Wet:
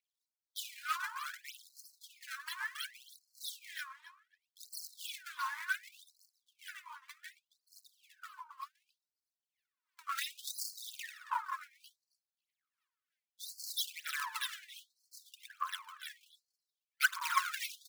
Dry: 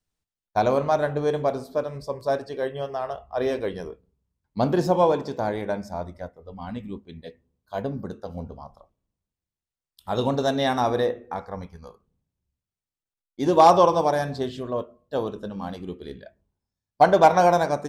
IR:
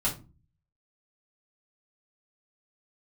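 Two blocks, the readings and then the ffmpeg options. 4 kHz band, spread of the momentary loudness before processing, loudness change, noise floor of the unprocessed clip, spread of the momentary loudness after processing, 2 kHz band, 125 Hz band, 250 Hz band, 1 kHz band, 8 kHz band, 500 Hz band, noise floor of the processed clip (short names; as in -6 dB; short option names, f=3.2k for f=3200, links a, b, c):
-4.5 dB, 21 LU, -16.5 dB, under -85 dBFS, 20 LU, -3.5 dB, under -40 dB, under -40 dB, -19.0 dB, 0.0 dB, under -40 dB, under -85 dBFS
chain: -filter_complex "[0:a]highpass=400,aecho=1:1:4.7:0.35,acrossover=split=2000[a][b];[a]acompressor=threshold=-29dB:ratio=6[c];[b]acrusher=samples=27:mix=1:aa=0.000001:lfo=1:lforange=43.2:lforate=3.1[d];[c][d]amix=inputs=2:normalize=0,asoftclip=type=tanh:threshold=-19dB,asplit=2[e][f];[f]adelay=273,lowpass=f=4.8k:p=1,volume=-14dB,asplit=2[g][h];[h]adelay=273,lowpass=f=4.8k:p=1,volume=0.17[i];[e][g][i]amix=inputs=3:normalize=0,aphaser=in_gain=1:out_gain=1:delay=3.8:decay=0.73:speed=0.64:type=triangular,afftfilt=real='re*gte(b*sr/1024,870*pow(4200/870,0.5+0.5*sin(2*PI*0.68*pts/sr)))':imag='im*gte(b*sr/1024,870*pow(4200/870,0.5+0.5*sin(2*PI*0.68*pts/sr)))':win_size=1024:overlap=0.75,volume=3.5dB"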